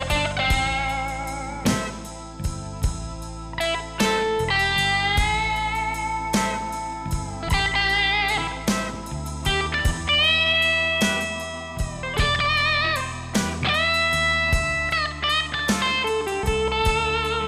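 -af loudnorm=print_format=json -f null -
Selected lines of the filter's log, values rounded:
"input_i" : "-22.1",
"input_tp" : "-10.6",
"input_lra" : "3.4",
"input_thresh" : "-32.2",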